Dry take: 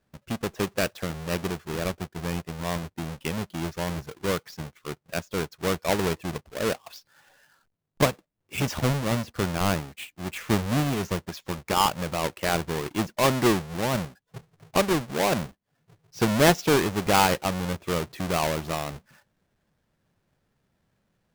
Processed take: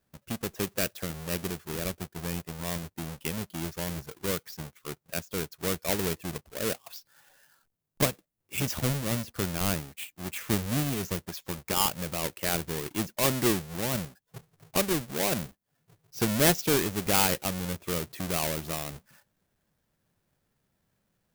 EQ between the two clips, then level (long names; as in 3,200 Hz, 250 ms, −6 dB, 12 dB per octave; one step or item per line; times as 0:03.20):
high-shelf EQ 7,800 Hz +12 dB
dynamic equaliser 930 Hz, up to −5 dB, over −37 dBFS, Q 1.1
−4.0 dB